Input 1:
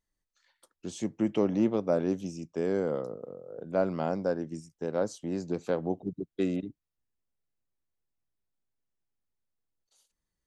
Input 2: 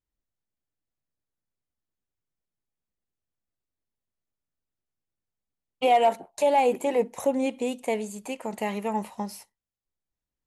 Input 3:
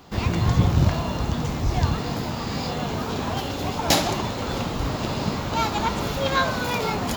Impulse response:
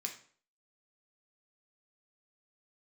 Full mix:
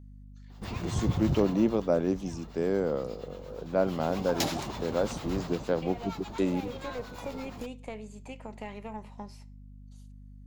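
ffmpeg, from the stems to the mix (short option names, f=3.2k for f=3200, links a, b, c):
-filter_complex "[0:a]volume=1dB,asplit=2[a][b];[1:a]aeval=exprs='0.282*(cos(1*acos(clip(val(0)/0.282,-1,1)))-cos(1*PI/2))+0.0178*(cos(6*acos(clip(val(0)/0.282,-1,1)))-cos(6*PI/2))':c=same,acompressor=threshold=-30dB:ratio=2,lowpass=5.4k,volume=-10dB,asplit=2[c][d];[d]volume=-9dB[e];[2:a]acrossover=split=830[f][g];[f]aeval=exprs='val(0)*(1-0.7/2+0.7/2*cos(2*PI*8.6*n/s))':c=same[h];[g]aeval=exprs='val(0)*(1-0.7/2-0.7/2*cos(2*PI*8.6*n/s))':c=same[i];[h][i]amix=inputs=2:normalize=0,adelay=500,volume=4.5dB,afade=t=out:st=1.27:d=0.67:silence=0.251189,afade=t=in:st=3.72:d=0.47:silence=0.251189,afade=t=out:st=5.4:d=0.3:silence=0.375837[j];[b]apad=whole_len=461320[k];[c][k]sidechaincompress=threshold=-33dB:ratio=8:attack=16:release=264[l];[3:a]atrim=start_sample=2205[m];[e][m]afir=irnorm=-1:irlink=0[n];[a][l][j][n]amix=inputs=4:normalize=0,aeval=exprs='val(0)+0.00447*(sin(2*PI*50*n/s)+sin(2*PI*2*50*n/s)/2+sin(2*PI*3*50*n/s)/3+sin(2*PI*4*50*n/s)/4+sin(2*PI*5*50*n/s)/5)':c=same"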